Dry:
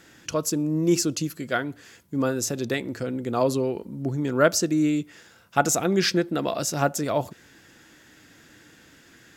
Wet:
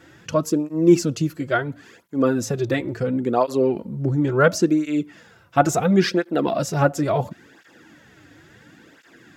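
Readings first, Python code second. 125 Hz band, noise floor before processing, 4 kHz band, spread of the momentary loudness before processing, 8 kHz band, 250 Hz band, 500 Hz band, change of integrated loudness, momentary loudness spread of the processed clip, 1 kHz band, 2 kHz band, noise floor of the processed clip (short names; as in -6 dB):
+5.5 dB, -54 dBFS, -2.5 dB, 9 LU, -5.0 dB, +4.5 dB, +4.5 dB, +4.0 dB, 8 LU, +4.5 dB, +2.5 dB, -53 dBFS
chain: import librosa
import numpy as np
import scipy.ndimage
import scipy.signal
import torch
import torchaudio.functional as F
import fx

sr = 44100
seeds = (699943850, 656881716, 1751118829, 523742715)

y = fx.peak_eq(x, sr, hz=13000.0, db=-11.5, octaves=2.6)
y = fx.flanger_cancel(y, sr, hz=0.72, depth_ms=5.1)
y = F.gain(torch.from_numpy(y), 8.0).numpy()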